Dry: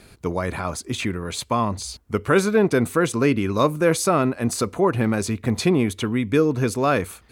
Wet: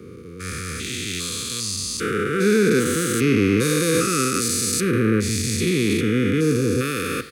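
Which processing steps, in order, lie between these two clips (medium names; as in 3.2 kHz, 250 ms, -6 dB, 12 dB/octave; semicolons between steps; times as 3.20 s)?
spectrogram pixelated in time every 400 ms; in parallel at 0 dB: peak limiter -18.5 dBFS, peak gain reduction 6.5 dB; on the sum: high-pass 76 Hz 24 dB/octave; reverse; upward compressor, threshold -28 dBFS; reverse; Chebyshev band-stop 500–1200 Hz, order 4; treble shelf 2.2 kHz +11 dB; speakerphone echo 100 ms, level -13 dB; three bands expanded up and down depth 100%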